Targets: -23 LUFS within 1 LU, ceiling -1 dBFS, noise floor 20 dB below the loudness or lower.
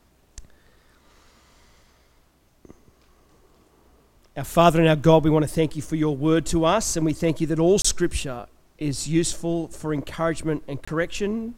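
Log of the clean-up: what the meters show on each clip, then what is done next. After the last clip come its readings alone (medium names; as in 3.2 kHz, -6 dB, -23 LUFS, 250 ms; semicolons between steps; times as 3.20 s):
dropouts 2; longest dropout 25 ms; loudness -22.0 LUFS; peak level -3.0 dBFS; loudness target -23.0 LUFS
-> interpolate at 7.82/10.85 s, 25 ms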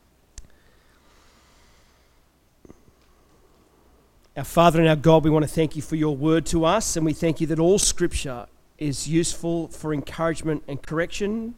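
dropouts 0; loudness -22.0 LUFS; peak level -3.0 dBFS; loudness target -23.0 LUFS
-> trim -1 dB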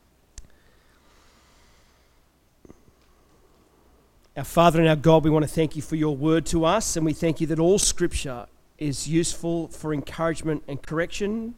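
loudness -23.0 LUFS; peak level -4.0 dBFS; noise floor -61 dBFS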